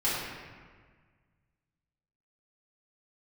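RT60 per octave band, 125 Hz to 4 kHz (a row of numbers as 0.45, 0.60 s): 2.3, 1.9, 1.6, 1.6, 1.5, 1.1 s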